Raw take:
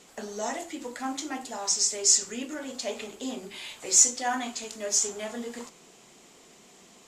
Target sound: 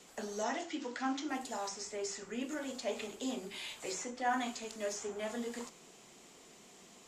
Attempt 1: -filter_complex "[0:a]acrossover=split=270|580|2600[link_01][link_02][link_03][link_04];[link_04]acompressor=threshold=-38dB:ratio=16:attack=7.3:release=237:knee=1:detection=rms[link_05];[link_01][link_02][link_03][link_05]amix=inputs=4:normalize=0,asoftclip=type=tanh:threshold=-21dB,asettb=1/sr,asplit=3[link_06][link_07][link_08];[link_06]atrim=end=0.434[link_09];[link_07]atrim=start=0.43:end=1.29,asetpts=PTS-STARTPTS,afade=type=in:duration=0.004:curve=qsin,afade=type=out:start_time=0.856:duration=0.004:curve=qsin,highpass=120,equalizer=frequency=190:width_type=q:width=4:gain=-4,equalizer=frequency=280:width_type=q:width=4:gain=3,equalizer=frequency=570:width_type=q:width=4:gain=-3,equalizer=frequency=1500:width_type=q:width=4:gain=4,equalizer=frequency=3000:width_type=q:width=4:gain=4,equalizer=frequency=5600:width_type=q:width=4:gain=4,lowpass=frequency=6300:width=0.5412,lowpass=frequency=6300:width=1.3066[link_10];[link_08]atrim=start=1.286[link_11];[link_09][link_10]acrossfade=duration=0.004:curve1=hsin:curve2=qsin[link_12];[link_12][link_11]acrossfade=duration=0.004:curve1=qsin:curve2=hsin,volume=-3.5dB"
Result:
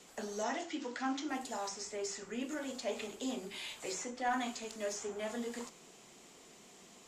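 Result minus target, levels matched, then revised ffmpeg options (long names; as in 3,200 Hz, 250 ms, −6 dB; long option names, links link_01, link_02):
soft clipping: distortion +14 dB
-filter_complex "[0:a]acrossover=split=270|580|2600[link_01][link_02][link_03][link_04];[link_04]acompressor=threshold=-38dB:ratio=16:attack=7.3:release=237:knee=1:detection=rms[link_05];[link_01][link_02][link_03][link_05]amix=inputs=4:normalize=0,asoftclip=type=tanh:threshold=-13dB,asettb=1/sr,asplit=3[link_06][link_07][link_08];[link_06]atrim=end=0.434[link_09];[link_07]atrim=start=0.43:end=1.29,asetpts=PTS-STARTPTS,afade=type=in:duration=0.004:curve=qsin,afade=type=out:start_time=0.856:duration=0.004:curve=qsin,highpass=120,equalizer=frequency=190:width_type=q:width=4:gain=-4,equalizer=frequency=280:width_type=q:width=4:gain=3,equalizer=frequency=570:width_type=q:width=4:gain=-3,equalizer=frequency=1500:width_type=q:width=4:gain=4,equalizer=frequency=3000:width_type=q:width=4:gain=4,equalizer=frequency=5600:width_type=q:width=4:gain=4,lowpass=frequency=6300:width=0.5412,lowpass=frequency=6300:width=1.3066[link_10];[link_08]atrim=start=1.286[link_11];[link_09][link_10]acrossfade=duration=0.004:curve1=hsin:curve2=qsin[link_12];[link_12][link_11]acrossfade=duration=0.004:curve1=qsin:curve2=hsin,volume=-3.5dB"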